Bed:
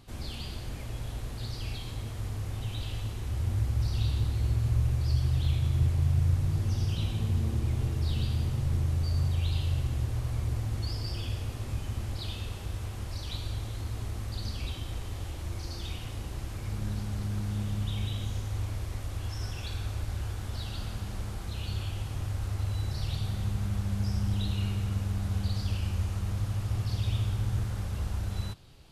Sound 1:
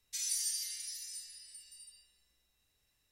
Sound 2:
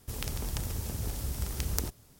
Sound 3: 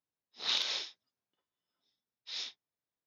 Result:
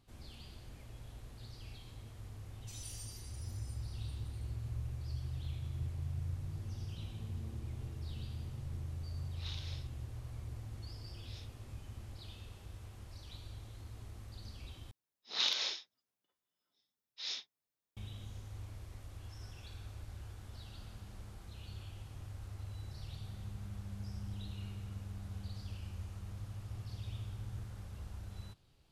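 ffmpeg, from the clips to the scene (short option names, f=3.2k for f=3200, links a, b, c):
-filter_complex "[3:a]asplit=2[a][b];[0:a]volume=-14dB[c];[b]highshelf=f=8.5k:g=5[d];[c]asplit=2[e][f];[e]atrim=end=14.914[g];[d]atrim=end=3.06,asetpts=PTS-STARTPTS,volume=-1.5dB[h];[f]atrim=start=17.966[i];[1:a]atrim=end=3.11,asetpts=PTS-STARTPTS,volume=-14.5dB,afade=t=in:d=0.004:c=hsin,afade=t=out:st=3.106:d=0.004:c=hsin,adelay=2540[j];[a]atrim=end=3.06,asetpts=PTS-STARTPTS,volume=-16.5dB,afade=t=in:d=0.004:c=hsin,afade=t=out:st=3.056:d=0.004:c=hsin,adelay=8970[k];[g][h]acrossfade=d=0.004:c1=hsin:c2=hsin[l];[l][i]acrossfade=d=0.004:c1=hsin:c2=hsin[m];[m][j][k]amix=inputs=3:normalize=0"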